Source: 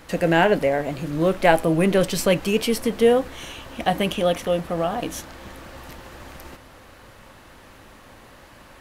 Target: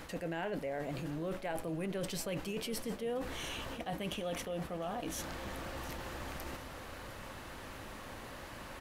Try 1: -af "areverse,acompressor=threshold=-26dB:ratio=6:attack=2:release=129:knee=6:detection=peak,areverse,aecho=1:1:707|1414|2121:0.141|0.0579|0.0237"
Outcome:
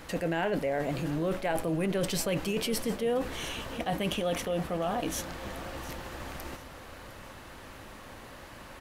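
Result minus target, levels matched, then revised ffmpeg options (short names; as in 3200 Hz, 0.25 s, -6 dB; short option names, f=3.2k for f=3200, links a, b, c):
compressor: peak gain reduction -8.5 dB
-af "areverse,acompressor=threshold=-36dB:ratio=6:attack=2:release=129:knee=6:detection=peak,areverse,aecho=1:1:707|1414|2121:0.141|0.0579|0.0237"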